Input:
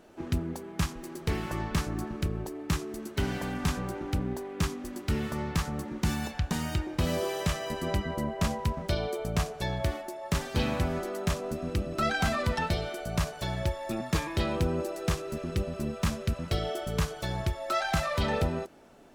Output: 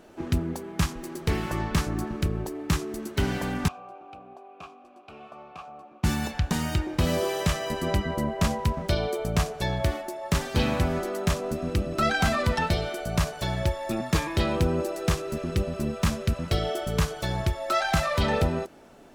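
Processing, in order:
0:03.68–0:06.04: formant filter a
level +4 dB

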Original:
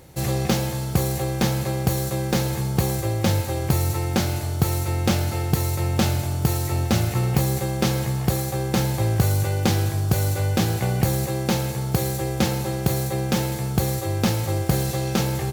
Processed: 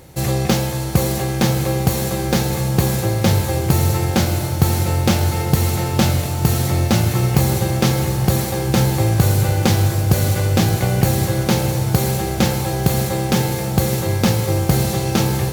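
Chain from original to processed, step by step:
feedback delay with all-pass diffusion 615 ms, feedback 67%, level −9 dB
level +4.5 dB

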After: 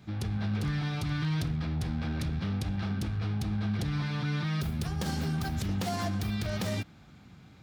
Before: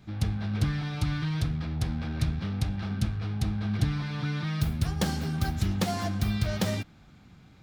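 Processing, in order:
wavefolder on the positive side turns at −22 dBFS
brickwall limiter −24 dBFS, peak gain reduction 9 dB
high-pass filter 58 Hz
level +1 dB

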